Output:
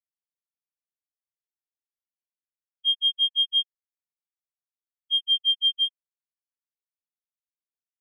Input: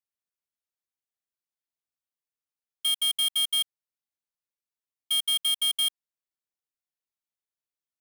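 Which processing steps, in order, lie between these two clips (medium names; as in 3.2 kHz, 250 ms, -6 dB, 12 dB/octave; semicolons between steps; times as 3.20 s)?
5.19–5.86 s: frequency shift -30 Hz; spectral contrast expander 4:1; trim +1.5 dB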